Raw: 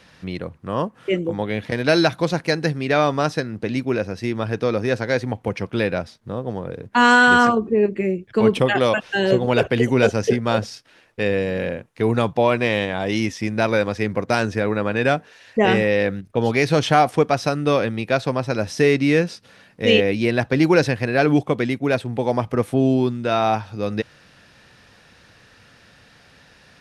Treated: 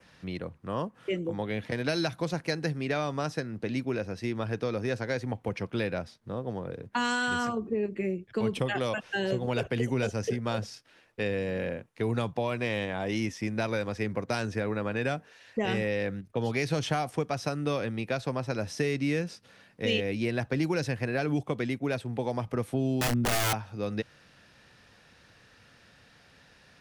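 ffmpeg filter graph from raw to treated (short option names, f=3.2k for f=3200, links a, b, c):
-filter_complex "[0:a]asettb=1/sr,asplit=3[a][b][c];[a]atrim=end=23.014[d];[b]atrim=start=23.01:end=23.53,asetpts=PTS-STARTPTS,afade=t=in:d=0.004:c=qsin,afade=t=out:st=0.516:d=0.004:c=qsin,tiltshelf=f=1.1k:g=7,aeval=exprs='(mod(4.73*val(0)+1,2)-1)/4.73':c=same,asplit=2[e][f];[f]adelay=25,volume=-5.5dB[g];[e][g]amix=inputs=2:normalize=0,atrim=end_sample=22932[h];[c]atrim=start=23.526[i];[d][h]acrossfade=d=0.004:c1=hsin:c2=qsin[j];[j][i]acrossfade=d=0.004:c1=qsin:c2=hsin,adynamicequalizer=threshold=0.00891:dfrequency=3900:dqfactor=1.8:tfrequency=3900:tqfactor=1.8:attack=5:release=100:ratio=0.375:range=2.5:mode=cutabove:tftype=bell,acrossover=split=160|3000[k][l][m];[l]acompressor=threshold=-20dB:ratio=6[n];[k][n][m]amix=inputs=3:normalize=0,volume=-7dB"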